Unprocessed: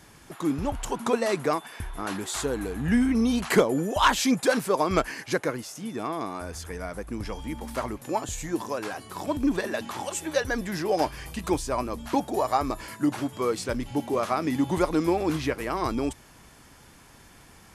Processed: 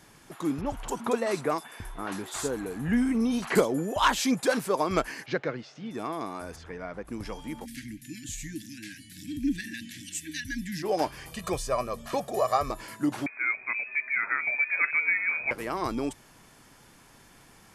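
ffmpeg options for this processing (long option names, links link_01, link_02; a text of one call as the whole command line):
ffmpeg -i in.wav -filter_complex "[0:a]asettb=1/sr,asplit=3[link_01][link_02][link_03];[link_01]atrim=end=0.614[link_04];[link_02]atrim=start=0.61:end=3.98,asetpts=PTS-STARTPTS,afade=type=in:duration=0.004:curve=qsin,afade=type=out:start_time=3.366:duration=0.004:curve=qsin,acrossover=split=3700[link_05][link_06];[link_06]adelay=50[link_07];[link_05][link_07]amix=inputs=2:normalize=0,atrim=end_sample=148617[link_08];[link_03]atrim=start=3.976[link_09];[link_04][link_08]acrossfade=duration=0.004:curve1=hsin:curve2=qsin[link_10];[link_10][link_09]acrossfade=duration=0.004:curve1=qsin:curve2=hsin,asettb=1/sr,asplit=3[link_11][link_12][link_13];[link_11]atrim=end=5.264[link_14];[link_12]atrim=start=5.26:end=5.91,asetpts=PTS-STARTPTS,afade=type=in:duration=0.004:curve=qsin,afade=type=out:start_time=0.646:duration=0.004:curve=qsin,highpass=100,equalizer=frequency=140:width_type=q:width=4:gain=4,equalizer=frequency=300:width_type=q:width=4:gain=-3,equalizer=frequency=1000:width_type=q:width=4:gain=-6,lowpass=frequency=4400:width=0.5412,lowpass=frequency=4400:width=1.3066[link_15];[link_13]atrim=start=5.906[link_16];[link_14][link_15]acrossfade=duration=0.004:curve1=hsin:curve2=qsin[link_17];[link_17][link_16]acrossfade=duration=0.004:curve1=qsin:curve2=hsin,asplit=3[link_18][link_19][link_20];[link_18]afade=type=out:start_time=6.55:duration=0.02[link_21];[link_19]lowpass=3300,afade=type=in:start_time=6.55:duration=0.02,afade=type=out:start_time=7.04:duration=0.02[link_22];[link_20]afade=type=in:start_time=7.04:duration=0.02[link_23];[link_21][link_22][link_23]amix=inputs=3:normalize=0,asplit=3[link_24][link_25][link_26];[link_24]afade=type=out:start_time=7.64:duration=0.02[link_27];[link_25]asuperstop=centerf=720:order=20:qfactor=0.53,afade=type=in:start_time=7.64:duration=0.02,afade=type=out:start_time=10.82:duration=0.02[link_28];[link_26]afade=type=in:start_time=10.82:duration=0.02[link_29];[link_27][link_28][link_29]amix=inputs=3:normalize=0,asettb=1/sr,asplit=3[link_30][link_31][link_32];[link_30]atrim=end=11.324[link_33];[link_31]atrim=start=11.32:end=12.71,asetpts=PTS-STARTPTS,afade=type=in:duration=0.004:curve=qsin,afade=type=out:start_time=1.386:duration=0.004:curve=qsin,aecho=1:1:1.7:0.7,atrim=end_sample=61299[link_34];[link_32]atrim=start=12.706[link_35];[link_33][link_34]acrossfade=duration=0.004:curve1=hsin:curve2=qsin[link_36];[link_36][link_35]acrossfade=duration=0.004:curve1=qsin:curve2=hsin,asettb=1/sr,asplit=3[link_37][link_38][link_39];[link_37]atrim=end=13.264[link_40];[link_38]atrim=start=13.26:end=15.51,asetpts=PTS-STARTPTS,afade=type=in:duration=0.004:curve=qsin,afade=type=out:start_time=2.246:duration=0.004:curve=qsin,lowpass=frequency=2200:width_type=q:width=0.5098,lowpass=frequency=2200:width_type=q:width=0.6013,lowpass=frequency=2200:width_type=q:width=0.9,lowpass=frequency=2200:width_type=q:width=2.563,afreqshift=-2600[link_41];[link_39]atrim=start=15.506[link_42];[link_40][link_41]acrossfade=duration=0.004:curve1=hsin:curve2=qsin[link_43];[link_43][link_42]acrossfade=duration=0.004:curve1=qsin:curve2=hsin,equalizer=frequency=63:width=2.8:gain=-15,volume=-2.5dB" out.wav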